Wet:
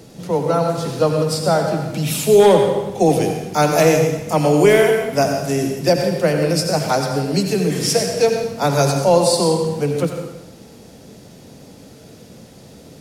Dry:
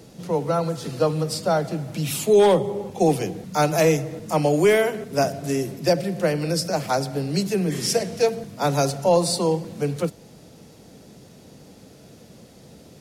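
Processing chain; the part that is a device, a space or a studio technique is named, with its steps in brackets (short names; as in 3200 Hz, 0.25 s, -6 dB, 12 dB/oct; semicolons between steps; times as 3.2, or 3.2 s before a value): bathroom (reverb RT60 0.95 s, pre-delay 73 ms, DRR 4 dB); gain +4 dB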